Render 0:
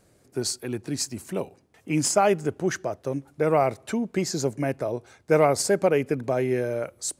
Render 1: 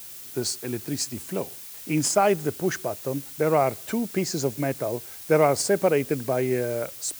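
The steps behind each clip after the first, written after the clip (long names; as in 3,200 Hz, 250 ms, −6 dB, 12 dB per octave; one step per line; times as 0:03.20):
background noise blue −41 dBFS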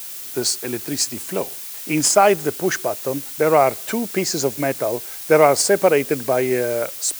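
low-shelf EQ 220 Hz −12 dB
level +8 dB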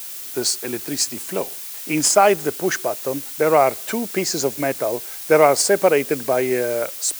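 high-pass filter 150 Hz 6 dB per octave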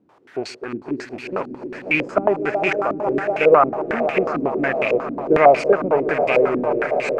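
loose part that buzzes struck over −32 dBFS, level −16 dBFS
echo that builds up and dies away 124 ms, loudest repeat 5, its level −13.5 dB
low-pass on a step sequencer 11 Hz 270–2,400 Hz
level −4 dB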